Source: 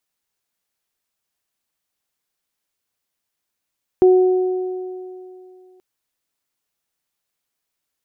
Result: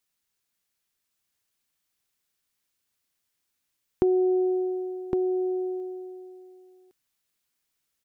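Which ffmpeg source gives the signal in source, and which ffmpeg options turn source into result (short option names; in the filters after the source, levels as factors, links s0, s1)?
-f lavfi -i "aevalsrc='0.447*pow(10,-3*t/2.59)*sin(2*PI*369*t)+0.0708*pow(10,-3*t/2.73)*sin(2*PI*738*t)':d=1.78:s=44100"
-filter_complex "[0:a]equalizer=f=680:t=o:w=1.7:g=-5.5,acompressor=threshold=0.1:ratio=6,asplit=2[s0][s1];[s1]aecho=0:1:1111:0.562[s2];[s0][s2]amix=inputs=2:normalize=0"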